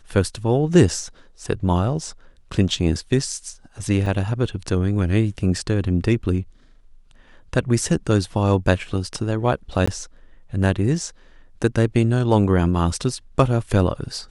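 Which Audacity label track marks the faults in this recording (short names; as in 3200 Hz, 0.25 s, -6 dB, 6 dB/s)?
4.060000	4.060000	gap 2.9 ms
9.860000	9.880000	gap 15 ms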